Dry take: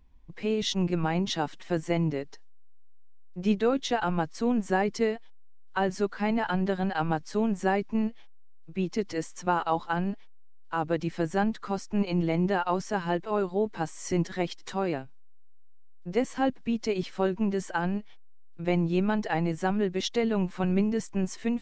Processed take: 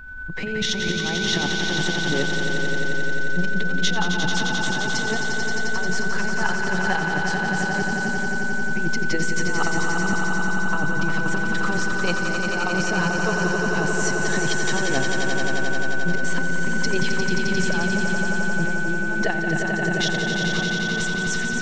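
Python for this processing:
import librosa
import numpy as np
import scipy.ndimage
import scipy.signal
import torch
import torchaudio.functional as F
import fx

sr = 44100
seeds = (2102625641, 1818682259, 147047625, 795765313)

y = fx.over_compress(x, sr, threshold_db=-32.0, ratio=-0.5)
y = y + 10.0 ** (-47.0 / 20.0) * np.sin(2.0 * np.pi * 1500.0 * np.arange(len(y)) / sr)
y = fx.echo_swell(y, sr, ms=88, loudest=5, wet_db=-6.5)
y = fx.pre_swell(y, sr, db_per_s=34.0)
y = y * librosa.db_to_amplitude(5.0)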